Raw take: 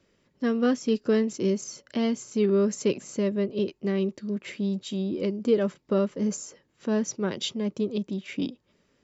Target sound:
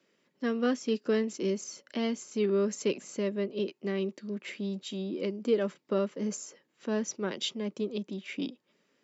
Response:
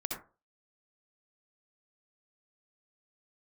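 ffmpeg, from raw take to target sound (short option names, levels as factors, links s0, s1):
-filter_complex "[0:a]equalizer=f=2400:t=o:w=1.6:g=3,acrossover=split=160|1100|2700[s0][s1][s2][s3];[s0]acrusher=bits=3:mix=0:aa=0.000001[s4];[s4][s1][s2][s3]amix=inputs=4:normalize=0,volume=0.631"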